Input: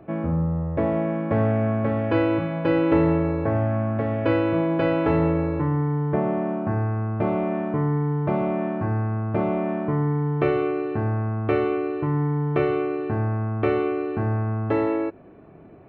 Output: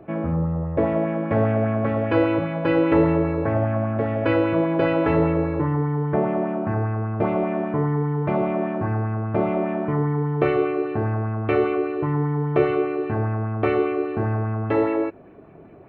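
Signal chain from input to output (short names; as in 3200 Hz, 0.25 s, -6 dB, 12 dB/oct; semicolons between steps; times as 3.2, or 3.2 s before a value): LFO bell 5 Hz 390–2700 Hz +6 dB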